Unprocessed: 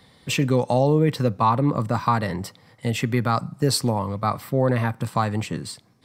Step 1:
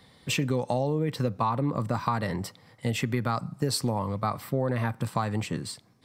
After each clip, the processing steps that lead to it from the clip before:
downward compressor, threshold −20 dBFS, peak gain reduction 6.5 dB
level −2.5 dB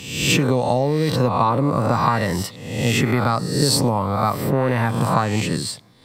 peak hold with a rise ahead of every peak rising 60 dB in 0.83 s
level +7 dB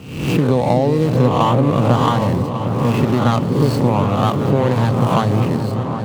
running median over 25 samples
on a send: echo whose low-pass opens from repeat to repeat 383 ms, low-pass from 400 Hz, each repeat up 2 octaves, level −6 dB
on the sum: level +3.5 dB

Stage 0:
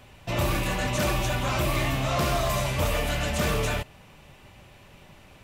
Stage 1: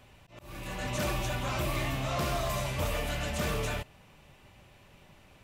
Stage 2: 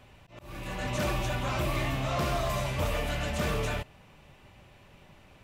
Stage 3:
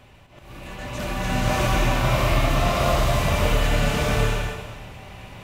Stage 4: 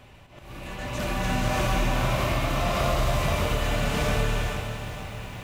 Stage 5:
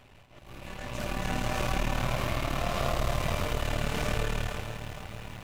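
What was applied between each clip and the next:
volume swells 548 ms; level −6 dB
high-shelf EQ 5,100 Hz −5.5 dB; level +2 dB
reversed playback; upward compression, threshold −41 dBFS; reversed playback; slow-attack reverb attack 650 ms, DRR −9.5 dB; level −1 dB
downward compressor 3 to 1, threshold −22 dBFS, peak gain reduction 6 dB; feedback echo at a low word length 460 ms, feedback 55%, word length 8 bits, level −10 dB
gain on one half-wave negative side −12 dB; level −2 dB

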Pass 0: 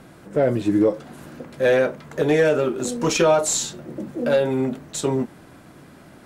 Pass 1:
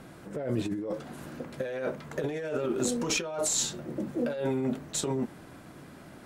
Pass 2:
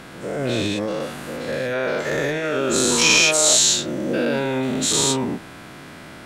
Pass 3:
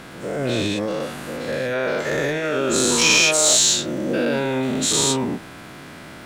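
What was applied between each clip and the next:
compressor whose output falls as the input rises −24 dBFS, ratio −1; level −6.5 dB
every bin's largest magnitude spread in time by 240 ms; parametric band 2,900 Hz +8.5 dB 2.8 octaves; level +1.5 dB
surface crackle 410 per second −44 dBFS; in parallel at −6 dB: soft clipping −12 dBFS, distortion −16 dB; on the sum: level −3 dB

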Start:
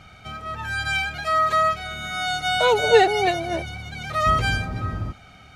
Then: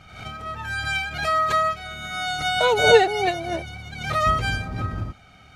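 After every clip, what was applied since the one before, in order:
transient designer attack +5 dB, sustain −1 dB
background raised ahead of every attack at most 75 dB per second
level −2.5 dB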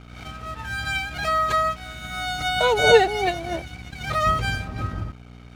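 mains hum 60 Hz, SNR 15 dB
dead-zone distortion −42 dBFS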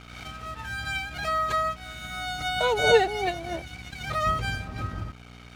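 one half of a high-frequency compander encoder only
level −4.5 dB

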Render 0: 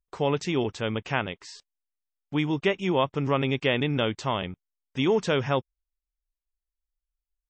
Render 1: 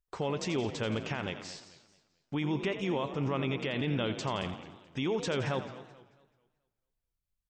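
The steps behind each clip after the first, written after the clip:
brickwall limiter −21.5 dBFS, peak gain reduction 11.5 dB
echo with shifted repeats 85 ms, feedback 53%, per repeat +48 Hz, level −11.5 dB
feedback echo with a swinging delay time 218 ms, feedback 36%, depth 219 cents, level −16 dB
level −1.5 dB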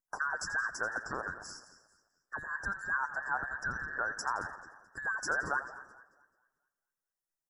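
frequency inversion band by band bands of 2,000 Hz
harmonic and percussive parts rebalanced harmonic −11 dB
Chebyshev band-stop filter 1,600–5,200 Hz, order 4
level +4 dB

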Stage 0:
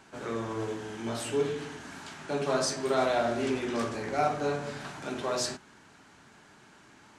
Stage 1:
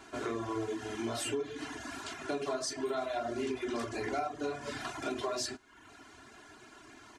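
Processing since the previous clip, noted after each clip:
reverb reduction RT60 0.63 s
comb filter 2.9 ms, depth 82%
downward compressor 10 to 1, threshold −33 dBFS, peak gain reduction 14.5 dB
level +1.5 dB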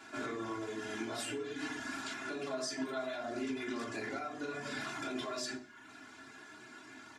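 brickwall limiter −30.5 dBFS, peak gain reduction 8 dB
convolution reverb RT60 0.40 s, pre-delay 3 ms, DRR 0.5 dB
level −2.5 dB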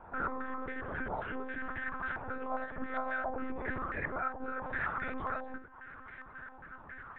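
healed spectral selection 0:03.43–0:03.79, 420–940 Hz after
one-pitch LPC vocoder at 8 kHz 260 Hz
low-pass on a step sequencer 7.4 Hz 890–1,900 Hz

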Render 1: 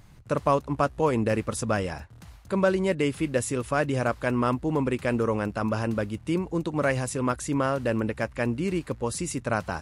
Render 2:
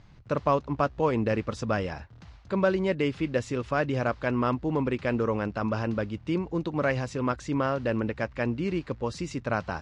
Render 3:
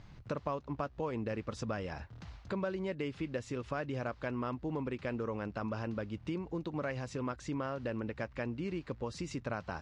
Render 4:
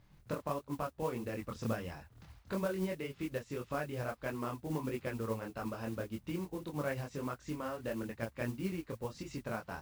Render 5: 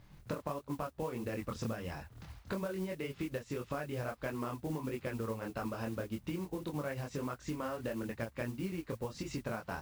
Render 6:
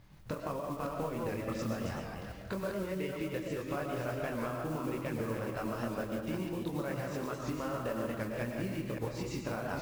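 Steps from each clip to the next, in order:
low-pass filter 5,500 Hz 24 dB per octave; level −1.5 dB
downward compressor 3 to 1, threshold −37 dBFS, peak gain reduction 13.5 dB
multi-voice chorus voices 2, 1.5 Hz, delay 24 ms, depth 3 ms; noise that follows the level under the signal 20 dB; expander for the loud parts 1.5 to 1, over −56 dBFS; level +4 dB
downward compressor, threshold −40 dBFS, peak gain reduction 10 dB; level +5.5 dB
delay that plays each chunk backwards 290 ms, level −5 dB; comb and all-pass reverb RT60 0.94 s, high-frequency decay 0.6×, pre-delay 75 ms, DRR 3 dB; wow of a warped record 78 rpm, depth 100 cents

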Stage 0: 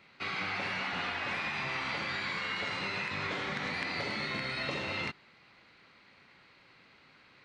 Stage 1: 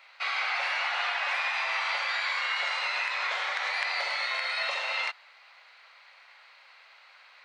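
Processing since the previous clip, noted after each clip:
Butterworth high-pass 610 Hz 36 dB per octave
level +6 dB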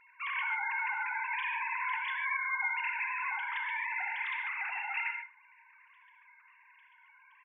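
three sine waves on the formant tracks
single-tap delay 81 ms −19 dB
reverb whose tail is shaped and stops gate 170 ms flat, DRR 4 dB
level −6 dB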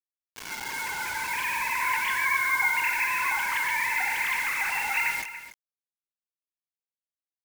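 fade in at the beginning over 2.06 s
bit reduction 7 bits
single-tap delay 285 ms −13 dB
level +8 dB

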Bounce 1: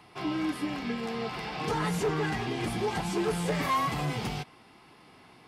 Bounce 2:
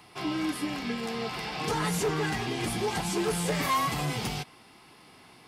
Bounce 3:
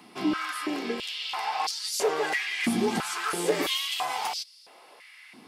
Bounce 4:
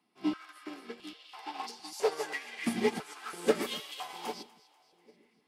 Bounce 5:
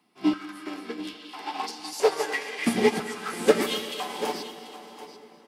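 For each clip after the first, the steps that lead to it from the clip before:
high-shelf EQ 4,200 Hz +9 dB
high-pass on a step sequencer 3 Hz 230–4,800 Hz
echo with a time of its own for lows and highs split 560 Hz, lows 797 ms, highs 245 ms, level −7.5 dB; expander for the loud parts 2.5 to 1, over −36 dBFS
single-tap delay 736 ms −13.5 dB; dense smooth reverb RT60 4.9 s, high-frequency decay 0.65×, DRR 12 dB; level +7.5 dB

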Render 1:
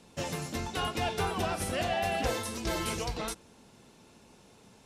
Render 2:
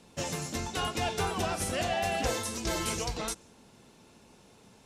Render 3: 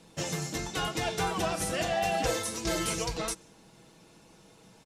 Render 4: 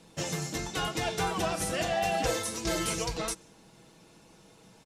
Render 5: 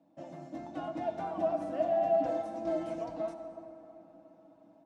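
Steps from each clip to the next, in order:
dynamic equaliser 6,900 Hz, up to +6 dB, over −54 dBFS, Q 1.4
comb filter 6.2 ms, depth 51%
no processing that can be heard
automatic gain control gain up to 5 dB; pair of resonant band-passes 430 Hz, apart 1.1 octaves; convolution reverb RT60 3.8 s, pre-delay 52 ms, DRR 8 dB

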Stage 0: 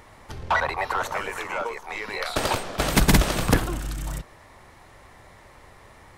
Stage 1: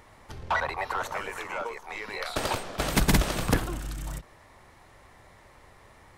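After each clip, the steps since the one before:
every ending faded ahead of time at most 400 dB per second
level −4.5 dB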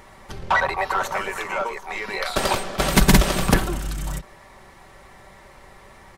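comb filter 5.2 ms, depth 44%
level +6.5 dB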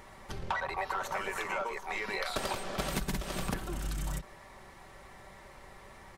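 downward compressor 16 to 1, threshold −25 dBFS, peak gain reduction 17 dB
level −5 dB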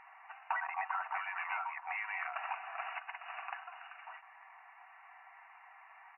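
linear-phase brick-wall band-pass 650–2,900 Hz
level −2 dB

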